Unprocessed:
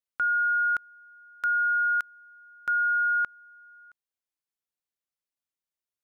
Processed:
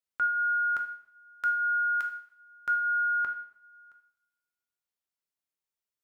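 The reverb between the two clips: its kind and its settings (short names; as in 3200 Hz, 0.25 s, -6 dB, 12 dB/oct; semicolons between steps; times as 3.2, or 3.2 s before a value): two-slope reverb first 0.62 s, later 1.6 s, from -25 dB, DRR 3.5 dB; gain -2.5 dB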